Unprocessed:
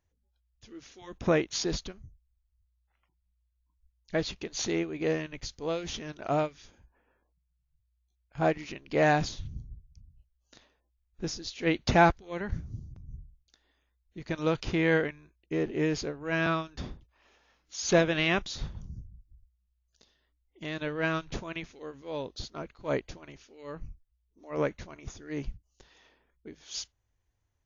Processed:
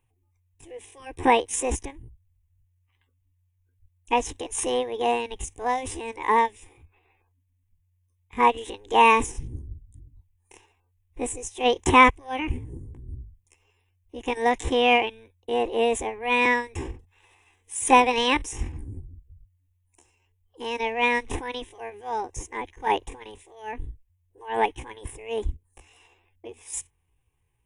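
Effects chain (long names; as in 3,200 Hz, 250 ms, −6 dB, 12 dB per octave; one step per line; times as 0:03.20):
phaser with its sweep stopped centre 610 Hz, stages 8
pitch shifter +7 semitones
level +9 dB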